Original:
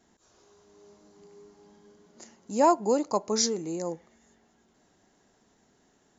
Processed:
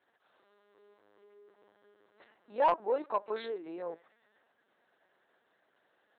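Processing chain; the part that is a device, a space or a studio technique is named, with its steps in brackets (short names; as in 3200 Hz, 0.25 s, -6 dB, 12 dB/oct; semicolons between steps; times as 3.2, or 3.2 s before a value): talking toy (LPC vocoder at 8 kHz pitch kept; HPF 450 Hz 12 dB/oct; bell 1600 Hz +7 dB 0.45 oct; soft clip -14 dBFS, distortion -17 dB); gain -3 dB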